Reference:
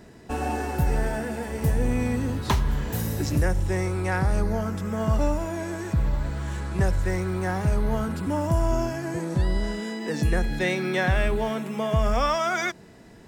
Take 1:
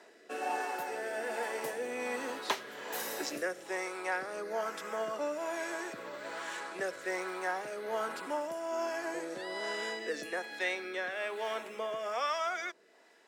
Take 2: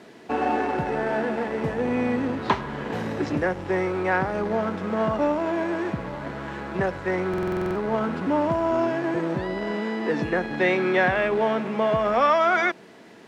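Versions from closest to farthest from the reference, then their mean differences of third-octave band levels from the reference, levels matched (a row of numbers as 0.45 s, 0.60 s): 2, 1; 6.5 dB, 8.5 dB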